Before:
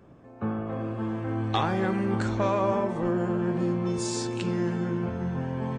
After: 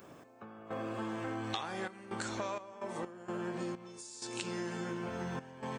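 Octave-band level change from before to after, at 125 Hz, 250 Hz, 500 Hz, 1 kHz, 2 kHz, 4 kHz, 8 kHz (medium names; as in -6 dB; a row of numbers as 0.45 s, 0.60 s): -16.5 dB, -13.5 dB, -12.0 dB, -10.0 dB, -6.0 dB, -5.5 dB, -7.0 dB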